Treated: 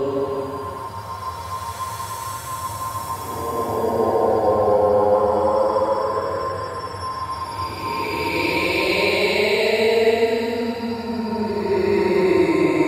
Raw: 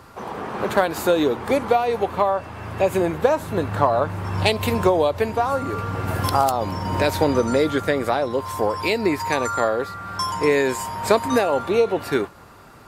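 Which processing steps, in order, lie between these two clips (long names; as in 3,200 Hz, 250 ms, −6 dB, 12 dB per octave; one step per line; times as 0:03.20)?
extreme stretch with random phases 18×, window 0.10 s, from 0:08.39
echo through a band-pass that steps 154 ms, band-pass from 540 Hz, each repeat 0.7 octaves, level −1 dB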